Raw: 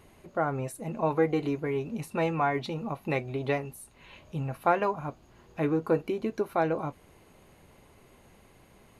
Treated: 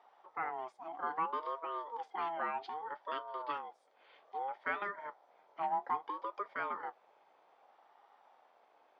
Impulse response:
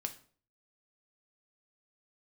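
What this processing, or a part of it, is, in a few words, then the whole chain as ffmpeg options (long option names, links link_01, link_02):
voice changer toy: -af "aeval=exprs='val(0)*sin(2*PI*650*n/s+650*0.25/0.62*sin(2*PI*0.62*n/s))':channel_layout=same,highpass=600,equalizer=frequency=810:width_type=q:width=4:gain=7,equalizer=frequency=1600:width_type=q:width=4:gain=-4,equalizer=frequency=2800:width_type=q:width=4:gain=-7,equalizer=frequency=4000:width_type=q:width=4:gain=-5,lowpass=frequency=4300:width=0.5412,lowpass=frequency=4300:width=1.3066,volume=-5.5dB"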